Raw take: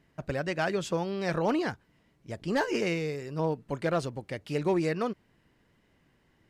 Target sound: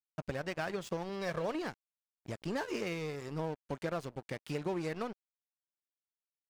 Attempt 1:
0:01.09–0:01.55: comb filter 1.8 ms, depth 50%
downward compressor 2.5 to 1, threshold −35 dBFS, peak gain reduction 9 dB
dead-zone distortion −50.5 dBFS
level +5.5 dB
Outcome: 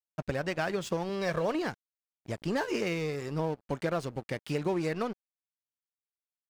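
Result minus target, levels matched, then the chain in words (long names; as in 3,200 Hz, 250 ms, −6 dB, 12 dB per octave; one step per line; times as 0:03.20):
downward compressor: peak gain reduction −5 dB
0:01.09–0:01.55: comb filter 1.8 ms, depth 50%
downward compressor 2.5 to 1, threshold −43 dBFS, peak gain reduction 13.5 dB
dead-zone distortion −50.5 dBFS
level +5.5 dB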